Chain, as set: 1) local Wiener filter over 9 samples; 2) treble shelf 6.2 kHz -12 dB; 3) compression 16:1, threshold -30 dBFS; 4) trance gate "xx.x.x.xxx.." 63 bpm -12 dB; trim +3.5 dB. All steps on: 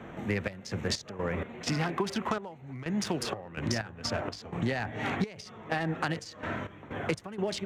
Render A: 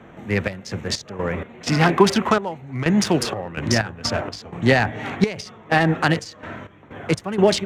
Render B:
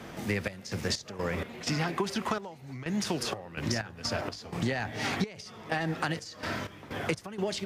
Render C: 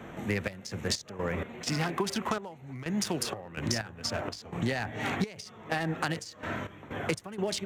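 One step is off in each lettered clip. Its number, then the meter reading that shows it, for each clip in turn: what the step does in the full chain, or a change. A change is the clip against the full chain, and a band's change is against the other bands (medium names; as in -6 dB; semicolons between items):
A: 3, mean gain reduction 8.5 dB; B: 1, 8 kHz band +2.0 dB; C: 2, 8 kHz band +4.5 dB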